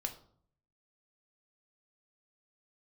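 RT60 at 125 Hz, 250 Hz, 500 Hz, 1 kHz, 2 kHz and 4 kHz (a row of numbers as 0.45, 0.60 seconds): 0.90, 0.75, 0.60, 0.55, 0.35, 0.35 seconds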